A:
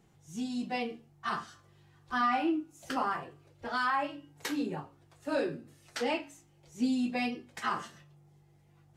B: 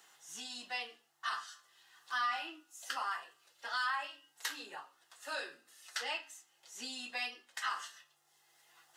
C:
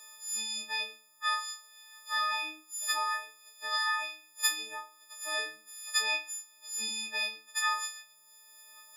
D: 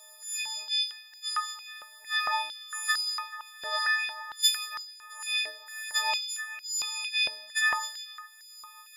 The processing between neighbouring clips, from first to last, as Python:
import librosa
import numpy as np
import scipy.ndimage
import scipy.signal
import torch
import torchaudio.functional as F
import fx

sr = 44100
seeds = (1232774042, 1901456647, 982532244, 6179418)

y1 = scipy.signal.sosfilt(scipy.signal.butter(2, 1500.0, 'highpass', fs=sr, output='sos'), x)
y1 = fx.notch(y1, sr, hz=2300.0, q=5.0)
y1 = fx.band_squash(y1, sr, depth_pct=40)
y1 = y1 * 10.0 ** (2.5 / 20.0)
y2 = fx.freq_snap(y1, sr, grid_st=6)
y3 = fx.spec_quant(y2, sr, step_db=15)
y3 = fx.echo_split(y3, sr, split_hz=2600.0, low_ms=435, high_ms=88, feedback_pct=52, wet_db=-11.5)
y3 = fx.filter_held_highpass(y3, sr, hz=4.4, low_hz=570.0, high_hz=5200.0)